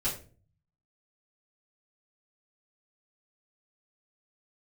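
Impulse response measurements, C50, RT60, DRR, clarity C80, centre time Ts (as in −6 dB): 8.5 dB, 0.40 s, −10.5 dB, 13.0 dB, 26 ms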